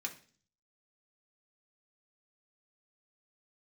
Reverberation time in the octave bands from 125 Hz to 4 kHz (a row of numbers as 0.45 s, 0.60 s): 0.75 s, 0.65 s, 0.45 s, 0.40 s, 0.40 s, 0.50 s